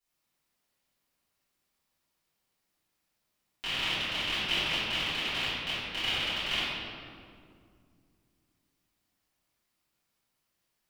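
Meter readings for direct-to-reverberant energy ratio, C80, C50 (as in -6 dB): -17.0 dB, -1.5 dB, -4.0 dB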